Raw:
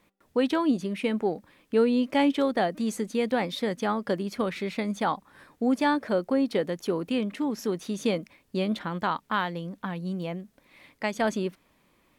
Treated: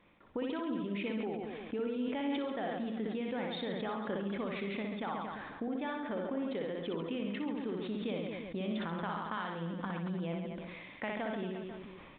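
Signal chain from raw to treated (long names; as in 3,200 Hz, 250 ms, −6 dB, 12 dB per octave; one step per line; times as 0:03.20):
downward compressor 5 to 1, threshold −38 dBFS, peak gain reduction 17.5 dB
on a send: reverse bouncing-ball delay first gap 60 ms, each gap 1.25×, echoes 5
on the sum: downsampling to 8,000 Hz
level that may fall only so fast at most 26 dB per second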